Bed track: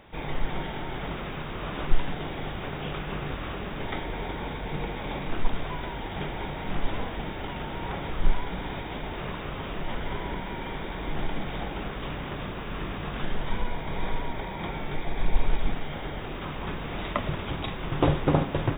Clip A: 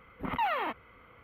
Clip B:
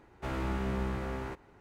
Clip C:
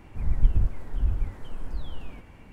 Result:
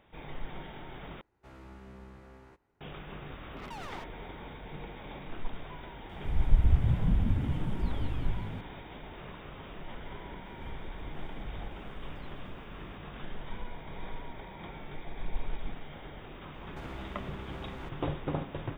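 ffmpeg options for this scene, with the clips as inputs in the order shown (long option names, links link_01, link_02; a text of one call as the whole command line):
ffmpeg -i bed.wav -i cue0.wav -i cue1.wav -i cue2.wav -filter_complex "[2:a]asplit=2[link_01][link_02];[3:a]asplit=2[link_03][link_04];[0:a]volume=-11dB[link_05];[1:a]asoftclip=type=tanh:threshold=-38.5dB[link_06];[link_03]asplit=9[link_07][link_08][link_09][link_10][link_11][link_12][link_13][link_14][link_15];[link_08]adelay=179,afreqshift=49,volume=-6dB[link_16];[link_09]adelay=358,afreqshift=98,volume=-10.6dB[link_17];[link_10]adelay=537,afreqshift=147,volume=-15.2dB[link_18];[link_11]adelay=716,afreqshift=196,volume=-19.7dB[link_19];[link_12]adelay=895,afreqshift=245,volume=-24.3dB[link_20];[link_13]adelay=1074,afreqshift=294,volume=-28.9dB[link_21];[link_14]adelay=1253,afreqshift=343,volume=-33.5dB[link_22];[link_15]adelay=1432,afreqshift=392,volume=-38.1dB[link_23];[link_07][link_16][link_17][link_18][link_19][link_20][link_21][link_22][link_23]amix=inputs=9:normalize=0[link_24];[link_04]acompressor=threshold=-25dB:ratio=6:attack=3.2:release=140:knee=1:detection=peak[link_25];[link_02]acompressor=threshold=-39dB:ratio=6:attack=3.2:release=140:knee=1:detection=peak[link_26];[link_05]asplit=2[link_27][link_28];[link_27]atrim=end=1.214[link_29];[link_01]atrim=end=1.6,asetpts=PTS-STARTPTS,volume=-16.5dB[link_30];[link_28]atrim=start=2.806[link_31];[link_06]atrim=end=1.23,asetpts=PTS-STARTPTS,volume=-4.5dB,afade=type=in:duration=0.004:curve=hsin,afade=type=out:start_time=1.226:duration=0.004:curve=hsin,adelay=3320[link_32];[link_24]atrim=end=2.52,asetpts=PTS-STARTPTS,volume=-3dB,afade=type=in:duration=0.004:curve=hsin,afade=type=out:start_time=2.516:duration=0.004:curve=hsin,adelay=6090[link_33];[link_25]atrim=end=2.52,asetpts=PTS-STARTPTS,volume=-12dB,afade=type=in:duration=0.004:curve=hsin,afade=type=out:start_time=2.516:duration=0.004:curve=hsin,adelay=10450[link_34];[link_26]atrim=end=1.6,asetpts=PTS-STARTPTS,volume=-1dB,afade=type=in:duration=0.004:curve=hsin,afade=type=out:start_time=1.596:duration=0.004:curve=hsin,adelay=16540[link_35];[link_29][link_30]acrossfade=duration=0.004:curve1=hsin:curve2=hsin[link_36];[link_36][link_31]acrossfade=duration=0.004:curve1=hsin:curve2=hsin[link_37];[link_37][link_32][link_33][link_34][link_35]amix=inputs=5:normalize=0" out.wav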